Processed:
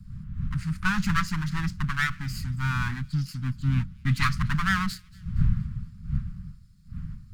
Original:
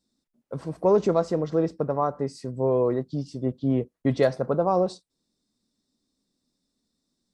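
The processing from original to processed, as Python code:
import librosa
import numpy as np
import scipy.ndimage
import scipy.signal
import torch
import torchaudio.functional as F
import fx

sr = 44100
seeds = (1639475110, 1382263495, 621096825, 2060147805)

p1 = fx.lower_of_two(x, sr, delay_ms=0.44)
p2 = fx.dmg_wind(p1, sr, seeds[0], corner_hz=140.0, level_db=-39.0)
p3 = scipy.signal.sosfilt(scipy.signal.cheby1(3, 1.0, [190.0, 1300.0], 'bandstop', fs=sr, output='sos'), p2)
p4 = p3 + fx.echo_wet_highpass(p3, sr, ms=233, feedback_pct=52, hz=2800.0, wet_db=-22.5, dry=0)
y = p4 * librosa.db_to_amplitude(7.5)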